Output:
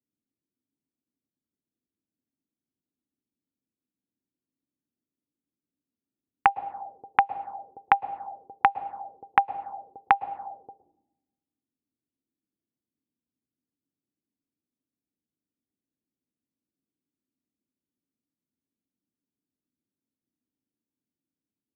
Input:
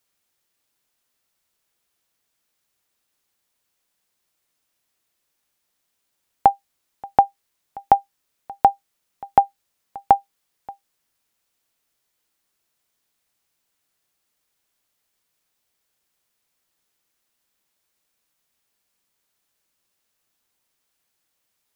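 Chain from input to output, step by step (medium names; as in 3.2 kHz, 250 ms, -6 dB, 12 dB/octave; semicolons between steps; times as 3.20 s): high-pass 71 Hz; plate-style reverb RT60 1.2 s, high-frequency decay 0.8×, pre-delay 100 ms, DRR 12.5 dB; touch-sensitive low-pass 270–2600 Hz up, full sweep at -20.5 dBFS; trim -7 dB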